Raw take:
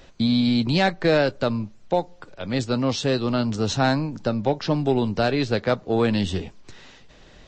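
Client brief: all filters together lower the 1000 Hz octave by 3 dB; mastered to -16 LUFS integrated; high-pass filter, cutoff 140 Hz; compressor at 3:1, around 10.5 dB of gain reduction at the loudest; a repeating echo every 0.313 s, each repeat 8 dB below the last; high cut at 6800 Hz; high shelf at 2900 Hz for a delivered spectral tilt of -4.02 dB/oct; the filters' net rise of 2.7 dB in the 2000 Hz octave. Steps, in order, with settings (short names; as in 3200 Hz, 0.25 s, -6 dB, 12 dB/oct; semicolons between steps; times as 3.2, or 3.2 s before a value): HPF 140 Hz; LPF 6800 Hz; bell 1000 Hz -6 dB; bell 2000 Hz +4.5 dB; high shelf 2900 Hz +3.5 dB; compressor 3:1, threshold -31 dBFS; feedback echo 0.313 s, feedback 40%, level -8 dB; gain +16 dB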